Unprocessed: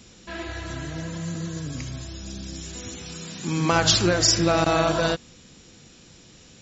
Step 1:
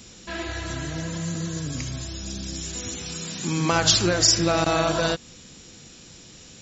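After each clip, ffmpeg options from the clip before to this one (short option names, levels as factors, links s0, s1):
-filter_complex "[0:a]highshelf=f=4800:g=6,asplit=2[s0][s1];[s1]acompressor=threshold=0.0447:ratio=6,volume=0.891[s2];[s0][s2]amix=inputs=2:normalize=0,volume=0.668"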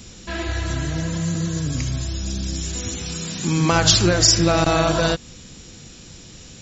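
-af "lowshelf=f=120:g=9,volume=1.41"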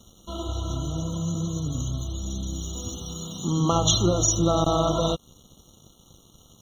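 -af "aeval=exprs='sgn(val(0))*max(abs(val(0))-0.0075,0)':c=same,afftfilt=real='re*eq(mod(floor(b*sr/1024/1400),2),0)':imag='im*eq(mod(floor(b*sr/1024/1400),2),0)':win_size=1024:overlap=0.75,volume=0.668"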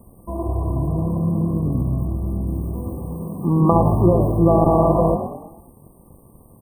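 -filter_complex "[0:a]asplit=6[s0][s1][s2][s3][s4][s5];[s1]adelay=108,afreqshift=41,volume=0.355[s6];[s2]adelay=216,afreqshift=82,volume=0.164[s7];[s3]adelay=324,afreqshift=123,volume=0.075[s8];[s4]adelay=432,afreqshift=164,volume=0.0347[s9];[s5]adelay=540,afreqshift=205,volume=0.0158[s10];[s0][s6][s7][s8][s9][s10]amix=inputs=6:normalize=0,afftfilt=real='re*(1-between(b*sr/4096,1200,7900))':imag='im*(1-between(b*sr/4096,1200,7900))':win_size=4096:overlap=0.75,volume=2.24"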